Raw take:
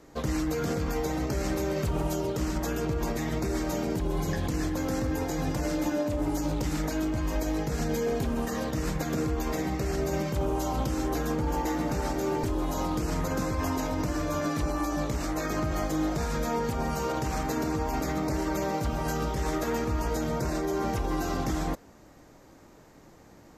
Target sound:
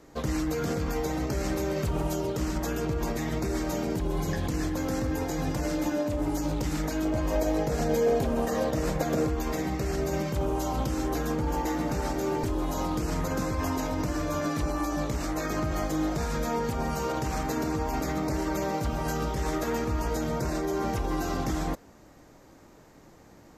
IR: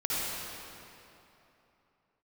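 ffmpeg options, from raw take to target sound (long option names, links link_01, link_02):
-filter_complex "[0:a]asettb=1/sr,asplit=3[link_01][link_02][link_03];[link_01]atrim=end=7.054[link_04];[link_02]atrim=start=7.05:end=9.29,asetpts=PTS-STARTPTS,afade=type=in:duration=0.004:curve=qsin,afade=type=out:start_time=2.236:duration=0.004:curve=qsin,equalizer=frequency=590:width_type=o:width=0.92:gain=8.5[link_05];[link_03]atrim=start=9.286[link_06];[link_04][link_05]acrossfade=duration=0.004:curve1=hsin:curve2=qsin[link_07];[link_07][link_06]acrossfade=duration=0.004:curve1=qsin:curve2=hsin"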